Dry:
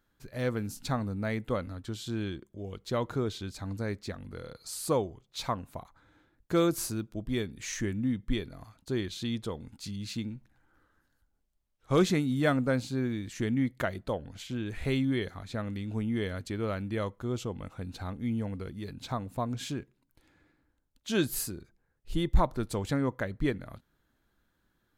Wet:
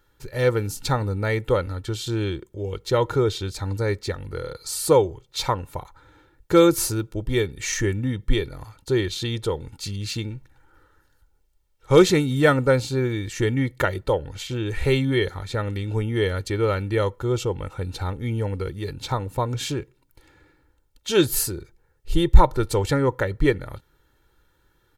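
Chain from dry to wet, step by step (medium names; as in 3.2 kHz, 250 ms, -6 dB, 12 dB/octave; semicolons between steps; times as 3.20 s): comb 2.2 ms, depth 68%; trim +8.5 dB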